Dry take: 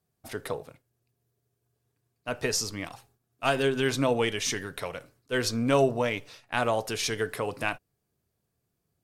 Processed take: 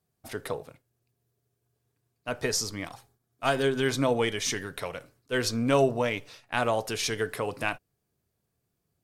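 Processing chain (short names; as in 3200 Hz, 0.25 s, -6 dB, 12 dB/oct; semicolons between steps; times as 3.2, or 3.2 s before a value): 2.31–4.47 notch 2700 Hz, Q 9.5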